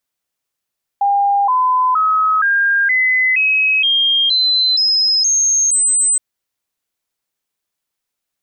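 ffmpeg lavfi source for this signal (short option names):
-f lavfi -i "aevalsrc='0.282*clip(min(mod(t,0.47),0.47-mod(t,0.47))/0.005,0,1)*sin(2*PI*804*pow(2,floor(t/0.47)/3)*mod(t,0.47))':d=5.17:s=44100"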